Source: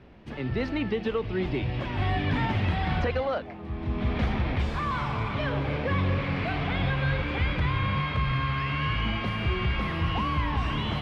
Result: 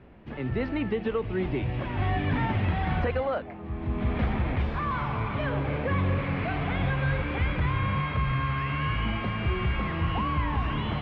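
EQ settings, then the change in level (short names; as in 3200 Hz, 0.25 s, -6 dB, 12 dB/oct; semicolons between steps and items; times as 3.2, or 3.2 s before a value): LPF 2600 Hz 12 dB/oct; 0.0 dB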